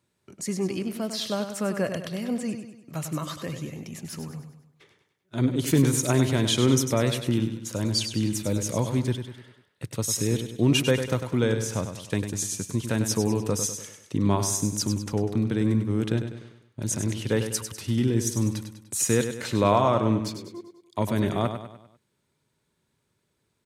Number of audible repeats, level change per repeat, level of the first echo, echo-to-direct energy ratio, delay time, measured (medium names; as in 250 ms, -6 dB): 4, -6.5 dB, -8.5 dB, -7.5 dB, 99 ms